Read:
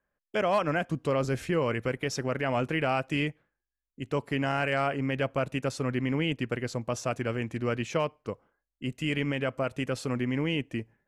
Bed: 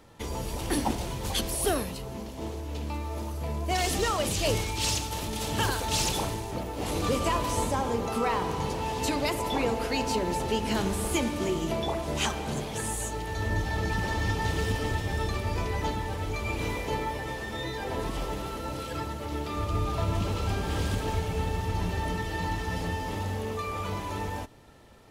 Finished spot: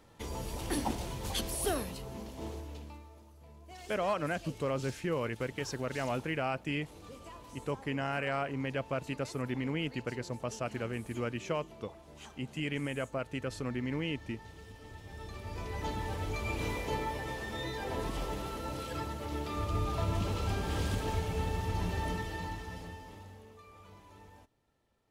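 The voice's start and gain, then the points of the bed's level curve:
3.55 s, -6.0 dB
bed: 2.57 s -5.5 dB
3.22 s -22.5 dB
14.74 s -22.5 dB
16.05 s -4 dB
22.11 s -4 dB
23.53 s -22 dB

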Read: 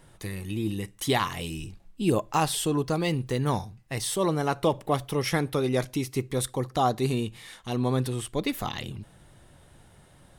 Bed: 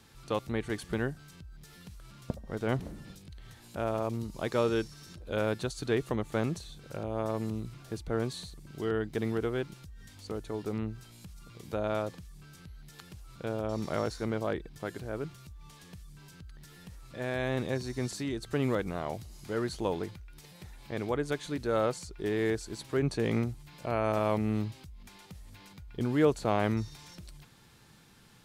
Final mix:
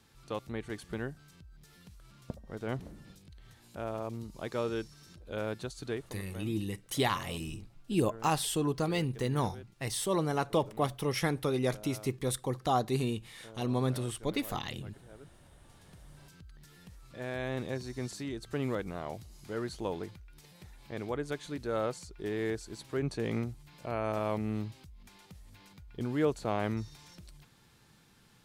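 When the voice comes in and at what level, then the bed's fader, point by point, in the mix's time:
5.90 s, -4.5 dB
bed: 5.89 s -5.5 dB
6.16 s -17 dB
15.39 s -17 dB
16.15 s -4 dB

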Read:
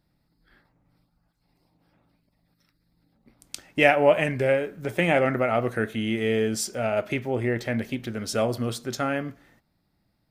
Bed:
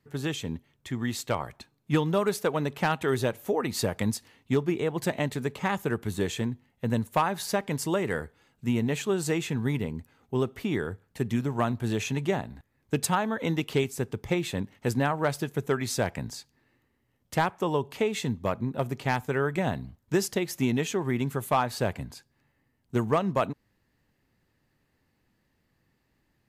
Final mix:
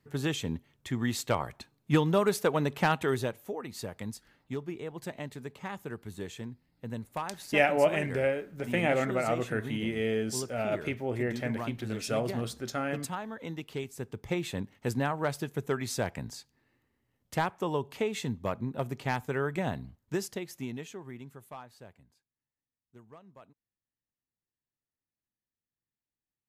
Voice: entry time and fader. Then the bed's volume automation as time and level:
3.75 s, -6.0 dB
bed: 2.96 s 0 dB
3.6 s -11 dB
13.77 s -11 dB
14.38 s -4 dB
19.86 s -4 dB
22.32 s -28 dB

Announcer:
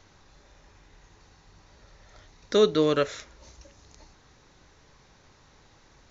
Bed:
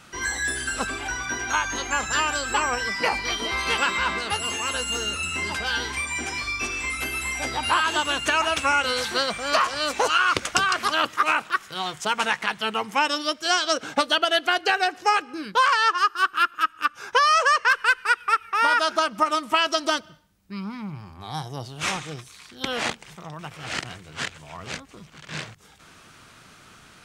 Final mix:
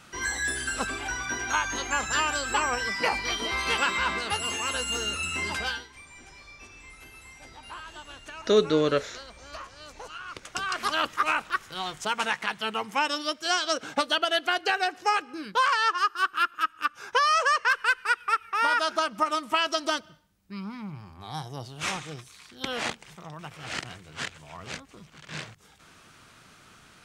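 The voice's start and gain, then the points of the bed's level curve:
5.95 s, -0.5 dB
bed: 5.68 s -2.5 dB
5.88 s -20.5 dB
10.25 s -20.5 dB
10.83 s -4 dB

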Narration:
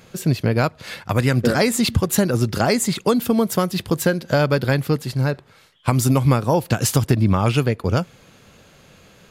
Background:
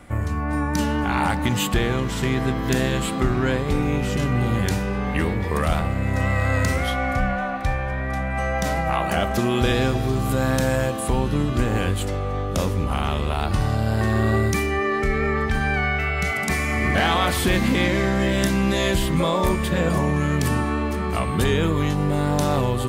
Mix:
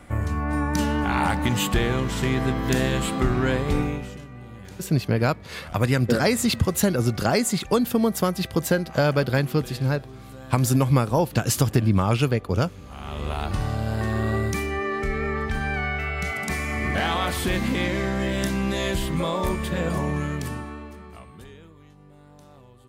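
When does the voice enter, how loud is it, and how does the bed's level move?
4.65 s, -3.0 dB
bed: 3.8 s -1 dB
4.27 s -20 dB
12.83 s -20 dB
13.26 s -4.5 dB
20.17 s -4.5 dB
21.76 s -29 dB

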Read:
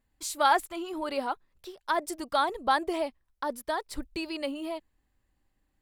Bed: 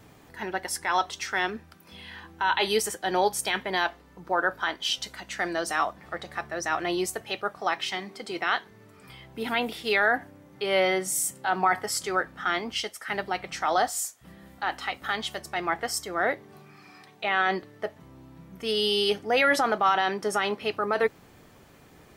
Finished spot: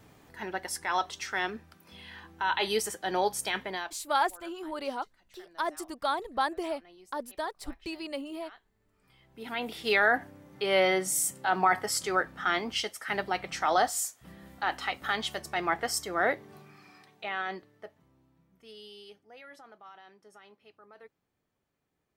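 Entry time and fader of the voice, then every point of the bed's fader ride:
3.70 s, -3.5 dB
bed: 3.65 s -4 dB
4.23 s -27.5 dB
8.61 s -27.5 dB
9.88 s -1 dB
16.51 s -1 dB
19.36 s -28.5 dB

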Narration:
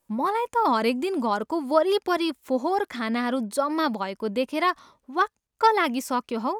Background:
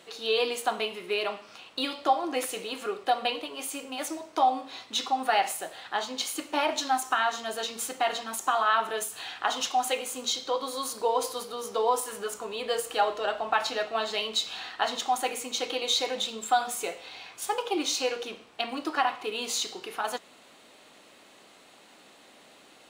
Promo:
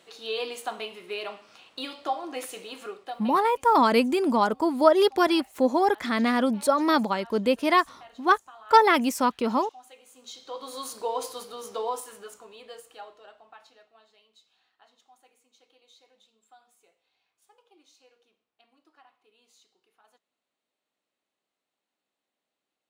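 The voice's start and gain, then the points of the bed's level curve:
3.10 s, +2.5 dB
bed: 2.86 s -5 dB
3.56 s -23 dB
9.95 s -23 dB
10.75 s -3.5 dB
11.74 s -3.5 dB
14.2 s -32.5 dB

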